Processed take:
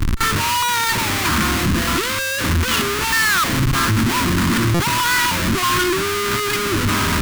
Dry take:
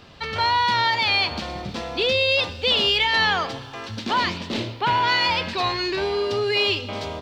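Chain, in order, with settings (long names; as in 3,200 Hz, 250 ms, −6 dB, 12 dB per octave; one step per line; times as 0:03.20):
auto-filter low-pass square 1.6 Hz 630–1,500 Hz
comparator with hysteresis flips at −38.5 dBFS
flat-topped bell 600 Hz −15 dB 1.2 octaves
on a send: backwards echo 37 ms −20.5 dB
on the sum: buffer that repeats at 0:04.74, samples 256
level +7 dB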